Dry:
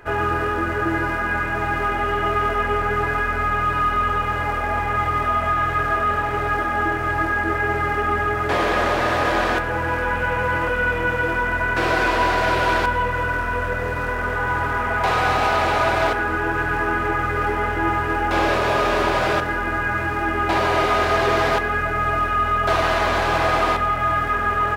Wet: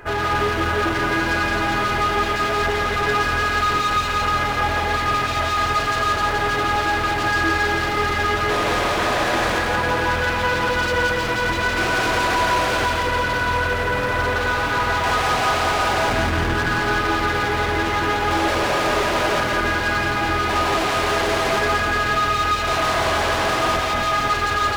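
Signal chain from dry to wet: 16.09–16.55 resonant low shelf 310 Hz +10.5 dB, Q 1.5; hard clip -24.5 dBFS, distortion -7 dB; split-band echo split 400 Hz, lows 0.252 s, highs 0.17 s, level -3 dB; gain +4 dB

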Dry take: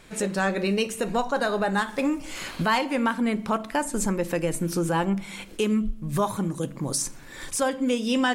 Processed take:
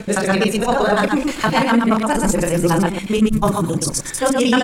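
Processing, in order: local time reversal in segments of 0.143 s; loudspeakers at several distances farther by 19 m -5 dB, 76 m -4 dB; tempo 1.8×; gain +7 dB

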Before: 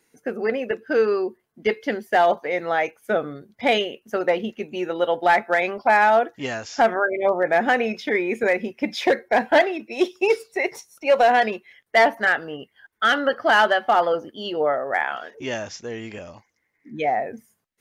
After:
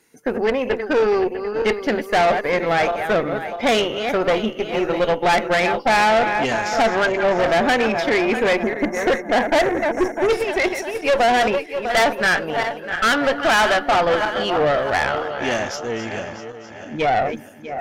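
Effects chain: regenerating reverse delay 0.324 s, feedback 64%, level -10.5 dB; spectral delete 8.63–10.29, 2200–5500 Hz; tube stage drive 21 dB, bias 0.55; gain +8 dB

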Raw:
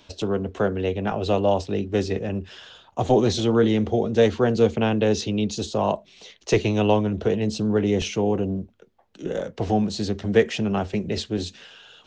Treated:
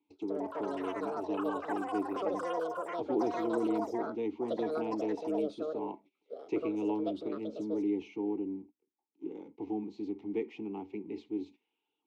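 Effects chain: G.711 law mismatch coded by mu; gate -36 dBFS, range -18 dB; vowel filter u; bell 430 Hz +10.5 dB 0.86 oct; echoes that change speed 0.151 s, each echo +7 st, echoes 3; gain -7.5 dB

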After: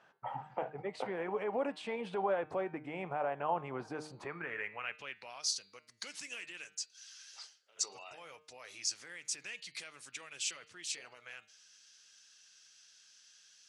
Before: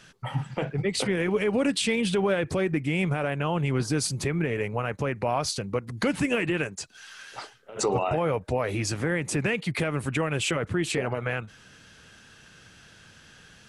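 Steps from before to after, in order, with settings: de-hum 153.3 Hz, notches 31; band-pass sweep 810 Hz -> 5700 Hz, 4.13–5.45

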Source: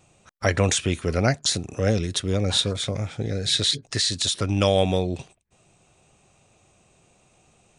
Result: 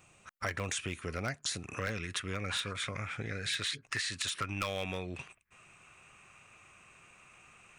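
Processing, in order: band shelf 1700 Hz +8 dB, from 1.61 s +15.5 dB; overloaded stage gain 9 dB; compressor 2.5:1, threshold -32 dBFS, peak gain reduction 12.5 dB; high shelf 9400 Hz +9.5 dB; gain -6 dB

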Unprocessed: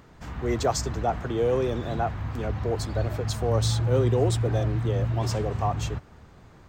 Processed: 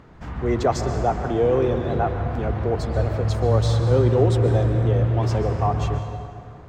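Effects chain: LPF 2100 Hz 6 dB/oct; plate-style reverb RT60 2.5 s, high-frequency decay 0.6×, pre-delay 0.11 s, DRR 7 dB; gain +4.5 dB

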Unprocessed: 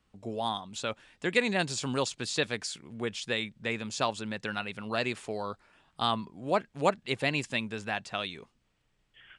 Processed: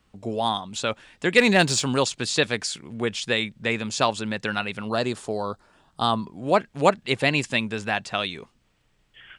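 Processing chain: 1.38–1.82 sample leveller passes 1; 4.89–6.26 bell 2300 Hz -11 dB 0.9 oct; gain +7.5 dB

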